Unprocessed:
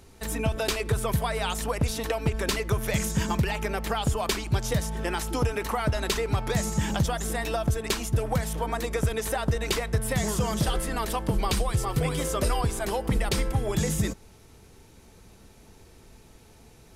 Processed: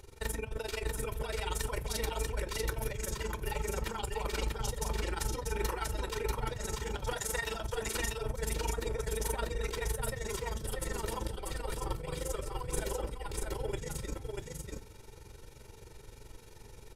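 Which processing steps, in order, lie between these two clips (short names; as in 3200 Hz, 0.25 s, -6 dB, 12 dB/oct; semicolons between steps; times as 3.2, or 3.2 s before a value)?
7.06–7.6 HPF 670 Hz 12 dB/oct; negative-ratio compressor -32 dBFS, ratio -1; AM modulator 23 Hz, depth 90%; echo 0.64 s -3 dB; reverb RT60 0.30 s, pre-delay 5 ms, DRR 13.5 dB; gain -4.5 dB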